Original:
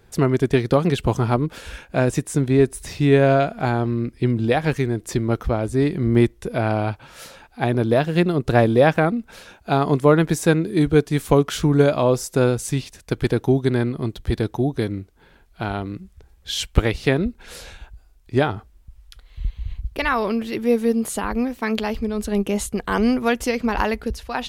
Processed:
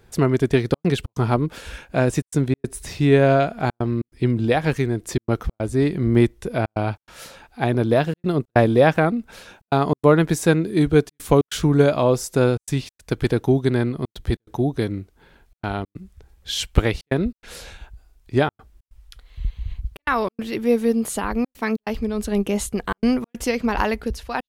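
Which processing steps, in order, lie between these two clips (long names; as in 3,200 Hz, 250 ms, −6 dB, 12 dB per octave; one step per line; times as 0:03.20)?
gate pattern "xxxxxxx.xx.xxx" 142 BPM −60 dB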